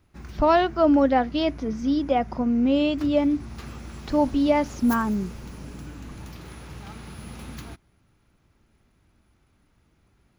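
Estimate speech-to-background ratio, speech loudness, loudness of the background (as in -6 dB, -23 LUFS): 17.5 dB, -22.5 LUFS, -40.0 LUFS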